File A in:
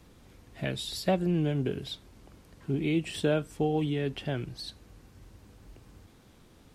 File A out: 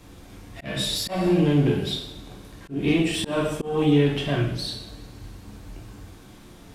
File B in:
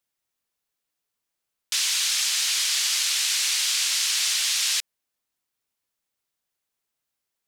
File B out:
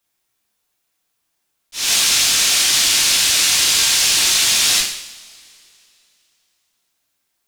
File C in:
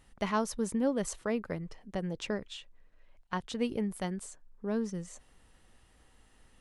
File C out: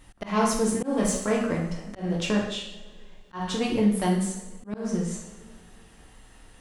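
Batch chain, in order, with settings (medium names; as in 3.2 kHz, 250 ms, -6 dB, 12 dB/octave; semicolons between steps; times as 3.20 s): single-diode clipper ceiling -23.5 dBFS; two-slope reverb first 0.68 s, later 2.9 s, from -22 dB, DRR -2.5 dB; slow attack 209 ms; trim +6.5 dB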